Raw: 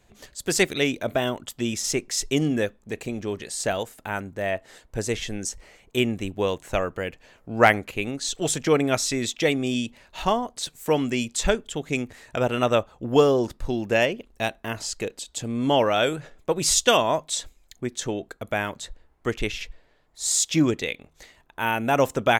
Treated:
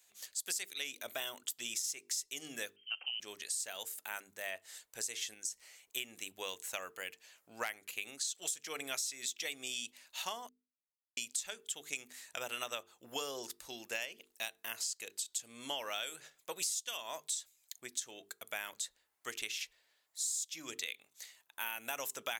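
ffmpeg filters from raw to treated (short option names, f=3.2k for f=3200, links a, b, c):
-filter_complex "[0:a]asettb=1/sr,asplit=3[a][b][c];[a]atrim=end=2.764[d];[b]atrim=start=2.76:end=3.2,asetpts=PTS-STARTPTS,afade=t=in:d=0.004:c=qsin,afade=t=out:st=0.436:d=0.004:c=qsin,lowpass=f=2.7k:t=q:w=0.5098,lowpass=f=2.7k:t=q:w=0.6013,lowpass=f=2.7k:t=q:w=0.9,lowpass=f=2.7k:t=q:w=2.563,afreqshift=-3200[e];[c]atrim=start=3.196[f];[d][e]acrossfade=d=0.004:c1=hsin:c2=qsin[g];[g][f]acrossfade=d=0.004:c1=qsin:c2=hsin,asettb=1/sr,asplit=3[h][i][j];[h]atrim=end=5.344[k];[i]atrim=start=5.34:end=5.96,asetpts=PTS-STARTPTS,afade=t=in:d=0.004:c=qsin,afade=t=out:st=0.616:d=0.004:c=qsin,acompressor=threshold=-44dB:ratio=1.5:attack=3.2:release=140:knee=1:detection=peak[l];[j]atrim=start=5.956[m];[k][l]acrossfade=d=0.004:c1=hsin:c2=qsin[n];[n][m]acrossfade=d=0.004:c1=qsin:c2=hsin,asplit=3[o][p][q];[o]atrim=end=10.49,asetpts=PTS-STARTPTS,afade=t=out:st=10.486:d=0.004:c=hsin[r];[p]atrim=start=10.49:end=11.17,asetpts=PTS-STARTPTS,volume=0[s];[q]atrim=start=11.17,asetpts=PTS-STARTPTS,afade=t=in:d=0.004:c=hsin[t];[r][s][t]concat=n=3:v=0:a=1,aderivative,bandreject=f=50:t=h:w=6,bandreject=f=100:t=h:w=6,bandreject=f=150:t=h:w=6,bandreject=f=200:t=h:w=6,bandreject=f=250:t=h:w=6,bandreject=f=300:t=h:w=6,bandreject=f=350:t=h:w=6,bandreject=f=400:t=h:w=6,bandreject=f=450:t=h:w=6,acompressor=threshold=-38dB:ratio=10,volume=3dB"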